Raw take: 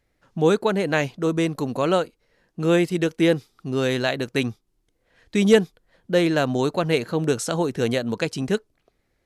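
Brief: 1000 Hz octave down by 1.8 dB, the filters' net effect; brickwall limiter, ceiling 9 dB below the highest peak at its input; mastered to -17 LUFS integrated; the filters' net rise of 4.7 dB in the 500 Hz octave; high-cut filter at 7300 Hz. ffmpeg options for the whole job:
-af "lowpass=7.3k,equalizer=f=500:t=o:g=6.5,equalizer=f=1k:t=o:g=-5.5,volume=4.5dB,alimiter=limit=-5.5dB:level=0:latency=1"

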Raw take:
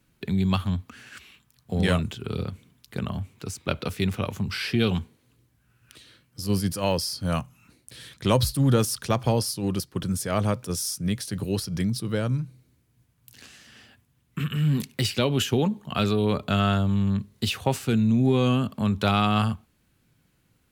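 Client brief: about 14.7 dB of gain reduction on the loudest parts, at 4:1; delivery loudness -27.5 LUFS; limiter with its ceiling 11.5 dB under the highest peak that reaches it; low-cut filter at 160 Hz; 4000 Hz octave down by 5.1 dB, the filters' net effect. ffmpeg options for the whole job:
-af "highpass=160,equalizer=f=4k:t=o:g=-7,acompressor=threshold=-36dB:ratio=4,volume=13.5dB,alimiter=limit=-17dB:level=0:latency=1"

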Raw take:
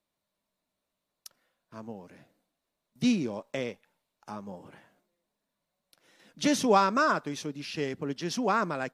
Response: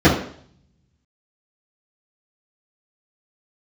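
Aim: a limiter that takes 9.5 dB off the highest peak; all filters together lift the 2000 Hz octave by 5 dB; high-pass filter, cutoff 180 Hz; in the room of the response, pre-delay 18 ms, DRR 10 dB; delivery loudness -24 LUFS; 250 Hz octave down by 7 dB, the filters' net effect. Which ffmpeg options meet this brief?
-filter_complex "[0:a]highpass=180,equalizer=f=250:t=o:g=-7,equalizer=f=2k:t=o:g=7.5,alimiter=limit=-18dB:level=0:latency=1,asplit=2[a][b];[1:a]atrim=start_sample=2205,adelay=18[c];[b][c]afir=irnorm=-1:irlink=0,volume=-35dB[d];[a][d]amix=inputs=2:normalize=0,volume=7dB"

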